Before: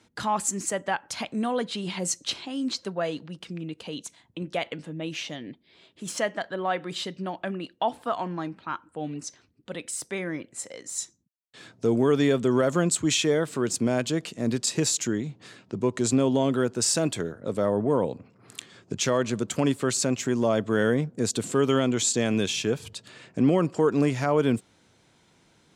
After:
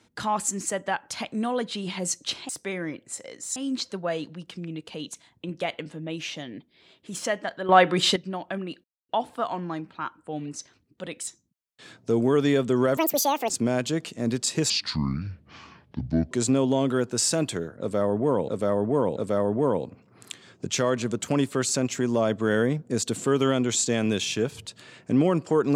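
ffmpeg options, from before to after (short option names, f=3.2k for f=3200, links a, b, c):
-filter_complex "[0:a]asplit=13[a][b][c][d][e][f][g][h][i][j][k][l][m];[a]atrim=end=2.492[n];[b]atrim=start=9.948:end=11.022[o];[c]atrim=start=2.488:end=6.622[p];[d]atrim=start=6.618:end=7.092,asetpts=PTS-STARTPTS,volume=11dB[q];[e]atrim=start=7.088:end=7.77,asetpts=PTS-STARTPTS,afade=t=out:st=0.678:d=0.004:c=hsin,apad=pad_dur=0.25[r];[f]atrim=start=7.77:end=9.952,asetpts=PTS-STARTPTS,afade=t=in:d=0.004:c=hsin[s];[g]atrim=start=11.018:end=12.724[t];[h]atrim=start=12.72:end=13.7,asetpts=PTS-STARTPTS,asetrate=82026,aresample=44100,atrim=end_sample=23235,asetpts=PTS-STARTPTS[u];[i]atrim=start=13.696:end=14.904[v];[j]atrim=start=14.9:end=15.95,asetpts=PTS-STARTPTS,asetrate=28665,aresample=44100,atrim=end_sample=71238,asetpts=PTS-STARTPTS[w];[k]atrim=start=15.946:end=18.122[x];[l]atrim=start=17.438:end=18.122[y];[m]atrim=start=17.438[z];[n][o]acrossfade=d=0.004:c1=hsin:c2=hsin[aa];[aa][p]acrossfade=d=0.004:c1=hsin:c2=hsin[ab];[ab][q]acrossfade=d=0.004:c1=hsin:c2=hsin[ac];[r][s]concat=n=2:v=0:a=1[ad];[ac][ad]acrossfade=d=0.004:c1=hsin:c2=hsin[ae];[ae][t]acrossfade=d=0.004:c1=hsin:c2=hsin[af];[af][u]acrossfade=d=0.004:c1=hsin:c2=hsin[ag];[ag][v]acrossfade=d=0.004:c1=hsin:c2=hsin[ah];[ah][w]acrossfade=d=0.004:c1=hsin:c2=hsin[ai];[ai][x]acrossfade=d=0.004:c1=hsin:c2=hsin[aj];[aj][y]acrossfade=d=0.004:c1=hsin:c2=hsin[ak];[ak][z]acrossfade=d=0.004:c1=hsin:c2=hsin"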